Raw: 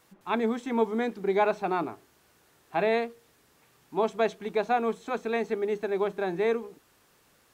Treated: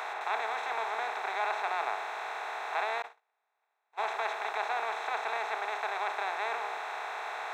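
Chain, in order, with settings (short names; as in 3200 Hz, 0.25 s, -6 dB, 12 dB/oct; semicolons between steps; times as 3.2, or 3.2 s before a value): per-bin compression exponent 0.2; 3.02–3.99 gate -18 dBFS, range -44 dB; ladder high-pass 690 Hz, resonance 20%; gain -4 dB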